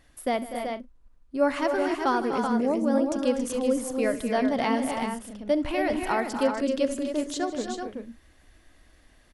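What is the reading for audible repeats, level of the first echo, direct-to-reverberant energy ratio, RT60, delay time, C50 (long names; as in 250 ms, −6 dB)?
6, −18.0 dB, no reverb audible, no reverb audible, 68 ms, no reverb audible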